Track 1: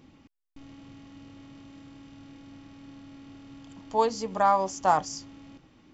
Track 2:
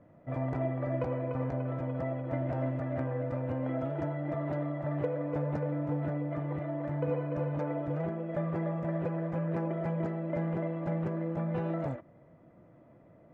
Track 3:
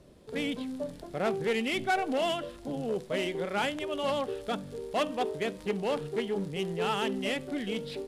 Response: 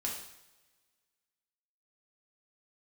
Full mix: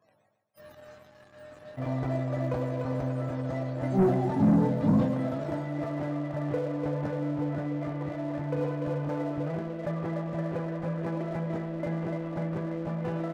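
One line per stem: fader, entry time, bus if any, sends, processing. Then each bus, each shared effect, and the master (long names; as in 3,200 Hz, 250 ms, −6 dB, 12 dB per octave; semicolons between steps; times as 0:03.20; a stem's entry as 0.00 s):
0.0 dB, 0.00 s, no send, echo send −13.5 dB, frequency axis turned over on the octave scale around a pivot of 410 Hz; high-pass filter 180 Hz 6 dB per octave; chorus effect 0.43 Hz, delay 18 ms, depth 6.1 ms
−9.0 dB, 1.50 s, send −7.5 dB, no echo send, no processing
muted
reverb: on, pre-delay 3 ms
echo: repeating echo 142 ms, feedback 54%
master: leveller curve on the samples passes 2; level that may fall only so fast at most 63 dB per second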